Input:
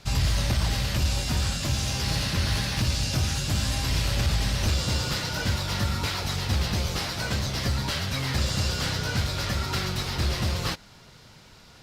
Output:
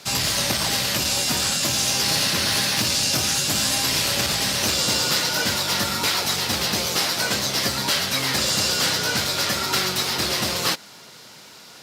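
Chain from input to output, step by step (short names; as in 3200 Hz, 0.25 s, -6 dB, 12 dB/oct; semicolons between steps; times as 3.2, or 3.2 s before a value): HPF 240 Hz 12 dB/oct; high shelf 6100 Hz +9 dB; gain +6.5 dB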